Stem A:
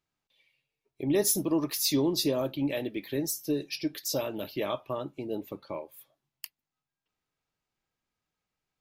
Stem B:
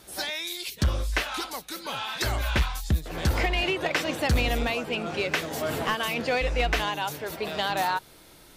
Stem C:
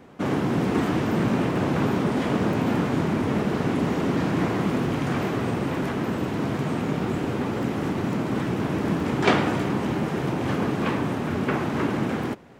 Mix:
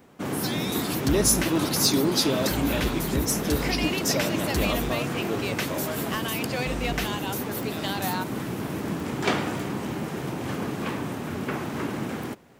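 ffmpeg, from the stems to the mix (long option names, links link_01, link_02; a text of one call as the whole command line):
ffmpeg -i stem1.wav -i stem2.wav -i stem3.wav -filter_complex "[0:a]lowpass=8000,volume=1.5dB[link_01];[1:a]adelay=250,volume=-5.5dB[link_02];[2:a]volume=-5.5dB[link_03];[link_01][link_02][link_03]amix=inputs=3:normalize=0,aemphasis=mode=production:type=50kf" out.wav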